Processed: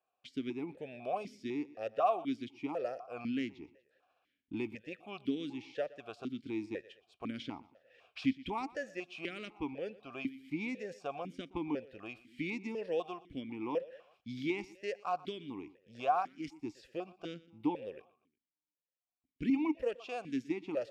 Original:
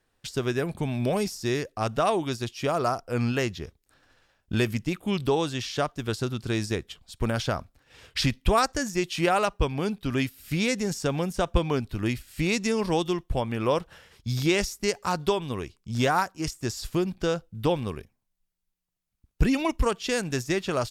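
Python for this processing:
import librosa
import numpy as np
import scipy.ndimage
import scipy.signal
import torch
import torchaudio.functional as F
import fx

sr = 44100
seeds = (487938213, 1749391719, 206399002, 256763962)

y = fx.echo_feedback(x, sr, ms=120, feedback_pct=45, wet_db=-20)
y = fx.vowel_held(y, sr, hz=4.0)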